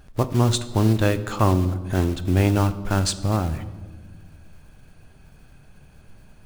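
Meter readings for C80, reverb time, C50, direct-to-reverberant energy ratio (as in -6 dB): 16.0 dB, 1.4 s, 14.5 dB, 11.5 dB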